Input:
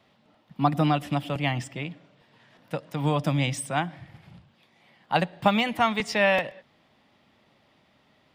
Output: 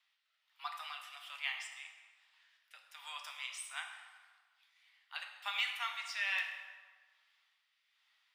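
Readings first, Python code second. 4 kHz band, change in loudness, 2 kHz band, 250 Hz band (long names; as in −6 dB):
−7.5 dB, −14.0 dB, −9.0 dB, below −40 dB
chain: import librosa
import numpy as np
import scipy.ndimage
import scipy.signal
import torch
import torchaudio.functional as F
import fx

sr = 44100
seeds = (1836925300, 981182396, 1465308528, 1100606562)

y = scipy.signal.sosfilt(scipy.signal.bessel(6, 1800.0, 'highpass', norm='mag', fs=sr, output='sos'), x)
y = fx.rotary(y, sr, hz=1.2)
y = fx.rev_plate(y, sr, seeds[0], rt60_s=1.5, hf_ratio=0.7, predelay_ms=0, drr_db=2.5)
y = y * 10.0 ** (-6.0 / 20.0)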